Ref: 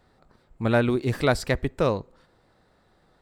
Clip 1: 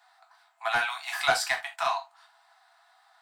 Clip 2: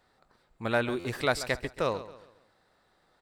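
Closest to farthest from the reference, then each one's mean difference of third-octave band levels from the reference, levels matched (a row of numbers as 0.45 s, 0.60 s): 2, 1; 6.0 dB, 16.5 dB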